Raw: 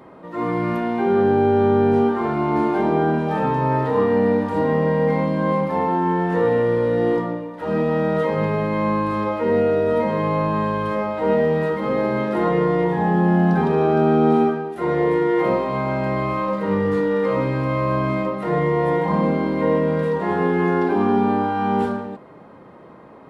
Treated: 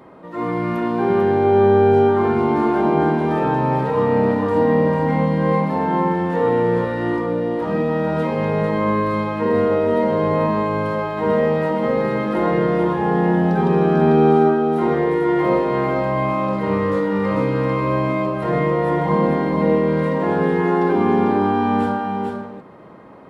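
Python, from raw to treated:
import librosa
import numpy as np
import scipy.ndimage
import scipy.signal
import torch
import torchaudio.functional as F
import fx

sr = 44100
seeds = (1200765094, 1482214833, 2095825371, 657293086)

y = x + 10.0 ** (-4.0 / 20.0) * np.pad(x, (int(445 * sr / 1000.0), 0))[:len(x)]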